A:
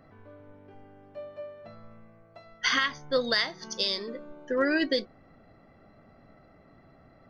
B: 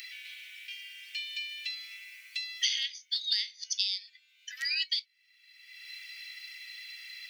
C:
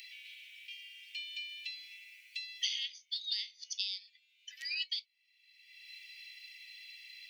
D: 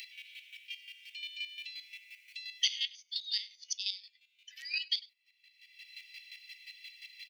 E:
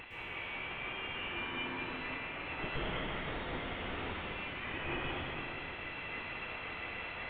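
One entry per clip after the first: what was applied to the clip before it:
Butterworth high-pass 2,300 Hz 48 dB per octave; multiband upward and downward compressor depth 100%; level +3 dB
four-pole ladder high-pass 2,100 Hz, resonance 40%; level −1 dB
square-wave tremolo 5.7 Hz, depth 65%, duty 25%; slap from a distant wall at 17 metres, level −21 dB; level +5.5 dB
linear delta modulator 16 kbit/s, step −44 dBFS; dense smooth reverb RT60 3.7 s, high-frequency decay 0.5×, pre-delay 100 ms, DRR −9 dB

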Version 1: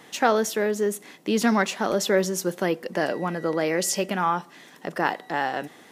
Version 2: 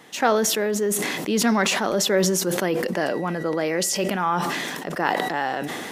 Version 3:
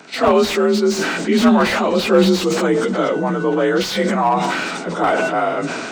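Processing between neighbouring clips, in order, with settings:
level that may fall only so fast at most 24 dB per second
partials spread apart or drawn together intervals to 87%; echo ahead of the sound 51 ms −19 dB; slew-rate limiting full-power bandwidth 110 Hz; level +8.5 dB

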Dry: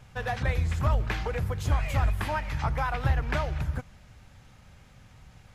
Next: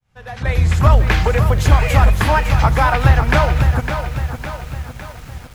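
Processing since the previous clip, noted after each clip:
fade in at the beginning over 0.64 s
automatic gain control gain up to 10 dB
feedback echo at a low word length 557 ms, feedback 55%, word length 7 bits, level −8 dB
level +4 dB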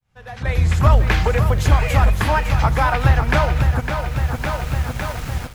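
automatic gain control gain up to 12 dB
level −3.5 dB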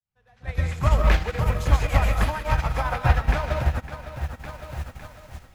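brickwall limiter −8.5 dBFS, peak gain reduction 4 dB
convolution reverb RT60 0.40 s, pre-delay 105 ms, DRR 2 dB
expander for the loud parts 2.5 to 1, over −26 dBFS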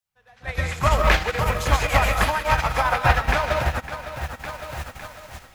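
low-shelf EQ 360 Hz −11 dB
level +8 dB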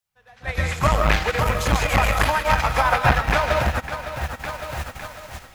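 saturating transformer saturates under 300 Hz
level +3 dB

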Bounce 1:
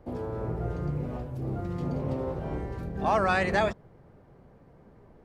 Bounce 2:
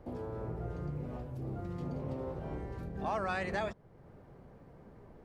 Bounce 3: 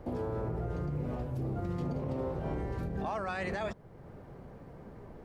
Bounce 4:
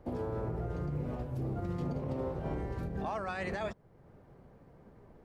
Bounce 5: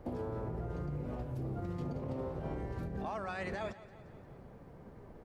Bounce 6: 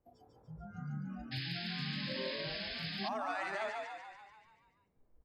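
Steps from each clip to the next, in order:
downward compressor 1.5 to 1, threshold −49 dBFS, peak gain reduction 10.5 dB
brickwall limiter −32.5 dBFS, peak gain reduction 10 dB; level +6 dB
expander for the loud parts 1.5 to 1, over −49 dBFS
downward compressor 2 to 1, threshold −45 dBFS, peak gain reduction 7.5 dB; repeating echo 174 ms, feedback 59%, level −16.5 dB; level +4 dB
noise reduction from a noise print of the clip's start 29 dB; echo with shifted repeats 145 ms, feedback 57%, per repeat +43 Hz, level −3 dB; sound drawn into the spectrogram noise, 0:01.31–0:03.09, 1,500–5,200 Hz −44 dBFS; level +1 dB

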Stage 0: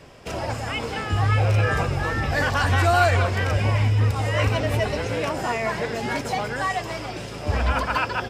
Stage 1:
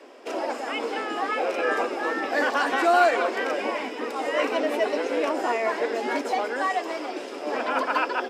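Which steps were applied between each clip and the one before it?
Butterworth high-pass 270 Hz 48 dB per octave
spectral tilt −2 dB per octave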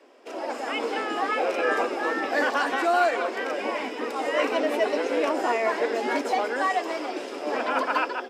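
automatic gain control gain up to 8.5 dB
level −7.5 dB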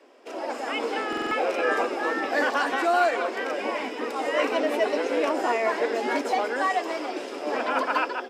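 buffer that repeats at 0:01.08, samples 2,048, times 4

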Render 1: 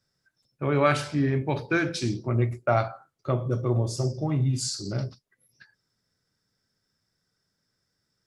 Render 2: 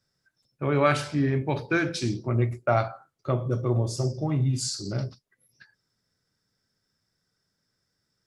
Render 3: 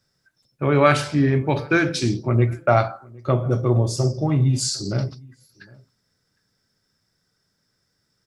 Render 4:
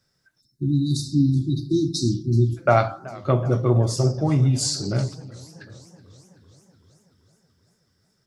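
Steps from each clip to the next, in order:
no processing that can be heard
slap from a distant wall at 130 metres, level −25 dB; level +6 dB
time-frequency box erased 0:00.41–0:02.57, 370–3,600 Hz; feedback echo with a swinging delay time 380 ms, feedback 63%, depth 140 cents, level −20.5 dB

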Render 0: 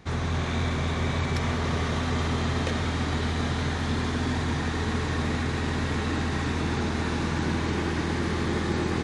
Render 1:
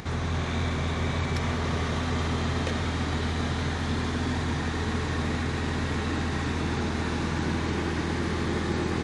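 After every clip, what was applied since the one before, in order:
upward compression, threshold −29 dBFS
level −1 dB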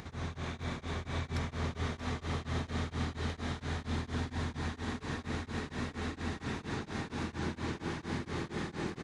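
single-tap delay 629 ms −5.5 dB
tremolo along a rectified sine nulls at 4.3 Hz
level −7.5 dB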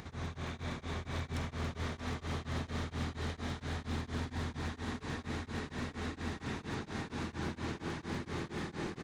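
wavefolder on the positive side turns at −30.5 dBFS
level −1.5 dB

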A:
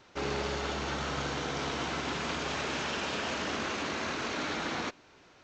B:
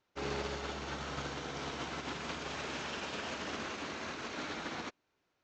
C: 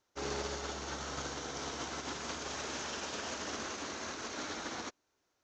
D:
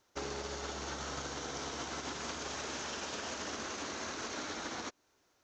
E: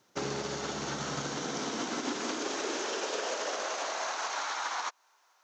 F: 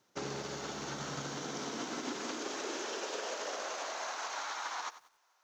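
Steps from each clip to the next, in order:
expander for the loud parts 2.5 to 1, over −44 dBFS; level −3 dB
graphic EQ with 15 bands 160 Hz −6 dB, 2,500 Hz −4 dB, 6,300 Hz +9 dB
downward compressor, threshold −44 dBFS, peak gain reduction 10 dB; level +6.5 dB
high-pass filter sweep 150 Hz → 930 Hz, 0:01.11–0:04.53; level +4.5 dB
feedback echo at a low word length 93 ms, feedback 35%, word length 9 bits, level −13.5 dB; level −5 dB

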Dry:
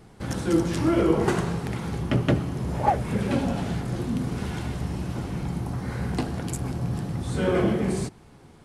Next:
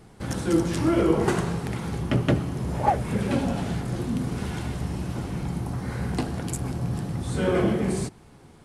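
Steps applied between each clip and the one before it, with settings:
parametric band 9,400 Hz +2.5 dB 0.77 octaves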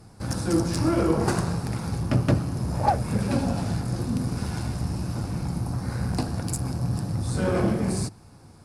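harmonic generator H 8 −28 dB, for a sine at −8 dBFS
thirty-one-band graphic EQ 100 Hz +8 dB, 400 Hz −6 dB, 2,000 Hz −6 dB, 3,150 Hz −9 dB, 5,000 Hz +8 dB, 10,000 Hz +5 dB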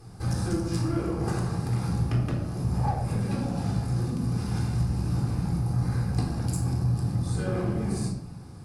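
downward compressor, threshold −29 dBFS, peak gain reduction 13 dB
convolution reverb RT60 0.70 s, pre-delay 3 ms, DRR 1 dB
level −2.5 dB

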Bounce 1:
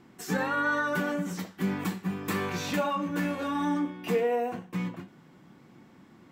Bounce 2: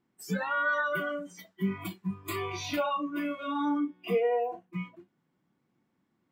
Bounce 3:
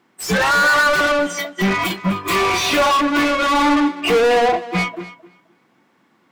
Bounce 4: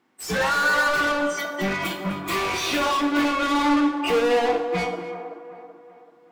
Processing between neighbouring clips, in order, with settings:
noise reduction from a noise print of the clip's start 21 dB
mid-hump overdrive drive 32 dB, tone 4,000 Hz, clips at −17.5 dBFS; tape delay 257 ms, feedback 25%, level −9.5 dB, low-pass 5,200 Hz; expander for the loud parts 1.5 to 1, over −45 dBFS; level +9 dB
delay with a band-pass on its return 382 ms, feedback 44%, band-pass 610 Hz, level −7 dB; coupled-rooms reverb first 0.67 s, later 2.6 s, from −27 dB, DRR 5.5 dB; level −7.5 dB

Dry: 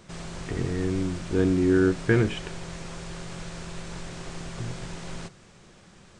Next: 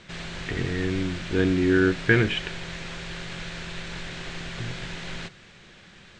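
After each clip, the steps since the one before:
low-pass filter 7,600 Hz 24 dB per octave
flat-topped bell 2,500 Hz +8.5 dB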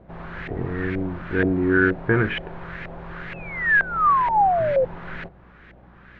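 mains hum 60 Hz, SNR 25 dB
sound drawn into the spectrogram fall, 0:03.33–0:04.85, 500–2,700 Hz −23 dBFS
auto-filter low-pass saw up 2.1 Hz 630–2,000 Hz

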